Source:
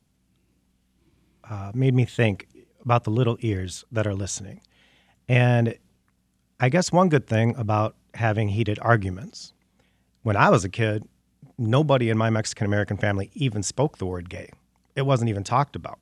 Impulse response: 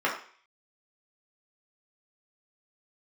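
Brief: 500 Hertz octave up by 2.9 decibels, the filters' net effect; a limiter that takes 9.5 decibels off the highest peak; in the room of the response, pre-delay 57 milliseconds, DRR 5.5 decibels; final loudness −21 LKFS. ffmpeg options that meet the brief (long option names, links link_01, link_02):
-filter_complex "[0:a]equalizer=frequency=500:width_type=o:gain=3.5,alimiter=limit=-10.5dB:level=0:latency=1,asplit=2[link_01][link_02];[1:a]atrim=start_sample=2205,adelay=57[link_03];[link_02][link_03]afir=irnorm=-1:irlink=0,volume=-18.5dB[link_04];[link_01][link_04]amix=inputs=2:normalize=0,volume=3dB"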